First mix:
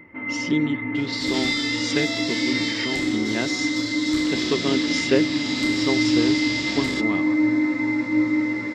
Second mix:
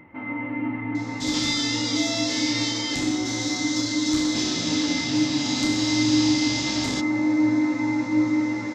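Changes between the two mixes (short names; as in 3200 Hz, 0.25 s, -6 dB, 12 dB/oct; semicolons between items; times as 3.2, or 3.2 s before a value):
speech: muted; master: add thirty-one-band EQ 125 Hz +4 dB, 400 Hz -5 dB, 800 Hz +8 dB, 2000 Hz -6 dB, 6300 Hz +10 dB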